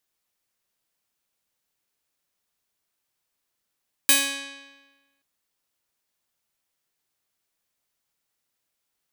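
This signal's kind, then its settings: plucked string C#4, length 1.13 s, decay 1.26 s, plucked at 0.4, bright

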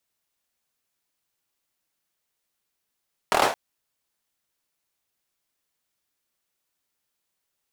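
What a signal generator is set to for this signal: hand clap length 0.22 s, bursts 5, apart 25 ms, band 720 Hz, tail 0.38 s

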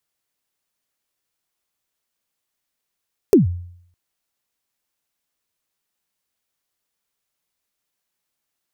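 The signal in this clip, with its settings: kick drum length 0.61 s, from 450 Hz, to 88 Hz, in 136 ms, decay 0.66 s, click on, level -5 dB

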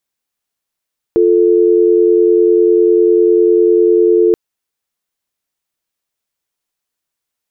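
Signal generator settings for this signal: call progress tone dial tone, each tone -9.5 dBFS 3.18 s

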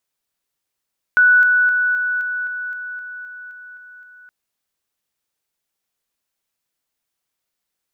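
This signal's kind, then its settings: level ladder 1.48 kHz -8.5 dBFS, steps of -3 dB, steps 12, 0.26 s 0.00 s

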